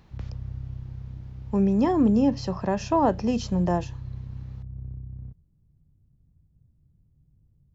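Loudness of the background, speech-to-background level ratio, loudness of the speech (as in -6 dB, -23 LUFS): -38.5 LUFS, 14.5 dB, -24.0 LUFS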